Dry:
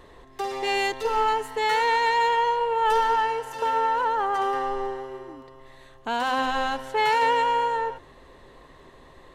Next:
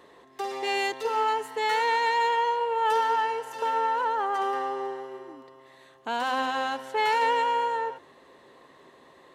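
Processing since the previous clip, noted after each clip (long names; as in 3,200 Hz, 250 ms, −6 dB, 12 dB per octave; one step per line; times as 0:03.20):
high-pass filter 200 Hz 12 dB per octave
level −2.5 dB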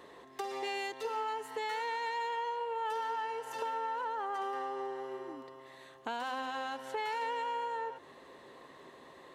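downward compressor 3 to 1, threshold −37 dBFS, peak gain reduction 12.5 dB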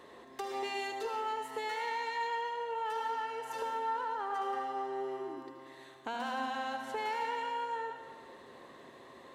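in parallel at −10 dB: asymmetric clip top −31.5 dBFS, bottom −30 dBFS
on the sum: convolution reverb RT60 1.4 s, pre-delay 71 ms, DRR 5 dB
level −3 dB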